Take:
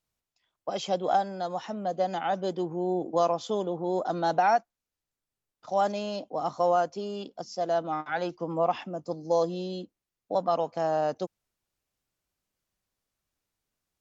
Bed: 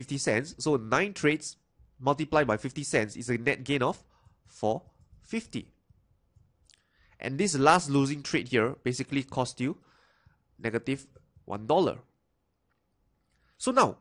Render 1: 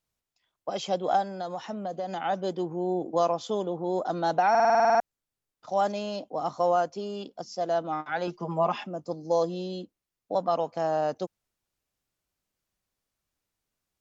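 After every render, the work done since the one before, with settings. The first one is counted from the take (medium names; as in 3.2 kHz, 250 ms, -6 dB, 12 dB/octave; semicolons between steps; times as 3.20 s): 1.36–2.21 s: compression, threshold -28 dBFS; 4.50 s: stutter in place 0.05 s, 10 plays; 8.27–8.87 s: comb 4.9 ms, depth 91%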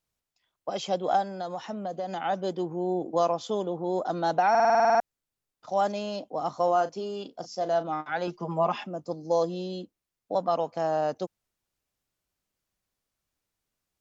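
6.64–7.90 s: doubling 37 ms -12 dB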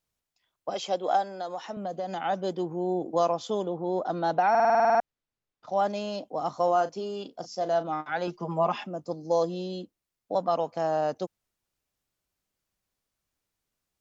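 0.74–1.77 s: high-pass 280 Hz; 3.68–5.93 s: distance through air 100 m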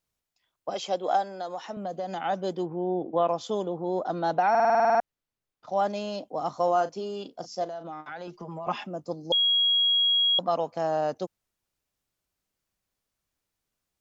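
2.66–3.29 s: brick-wall FIR low-pass 3.9 kHz; 7.64–8.67 s: compression 5:1, threshold -35 dBFS; 9.32–10.39 s: bleep 3.3 kHz -19.5 dBFS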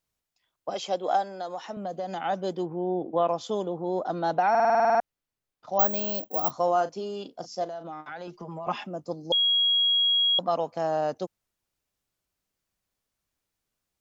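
5.79–6.51 s: careless resampling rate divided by 2×, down filtered, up zero stuff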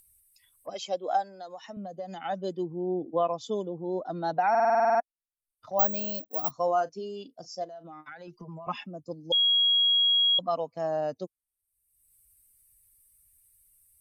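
expander on every frequency bin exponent 1.5; upward compressor, threshold -39 dBFS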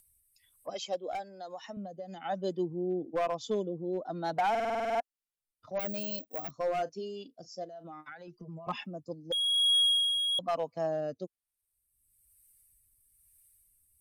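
hard clipper -22.5 dBFS, distortion -14 dB; rotary cabinet horn 1.1 Hz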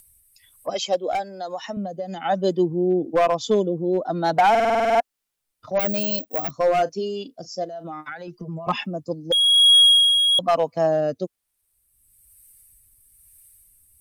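trim +12 dB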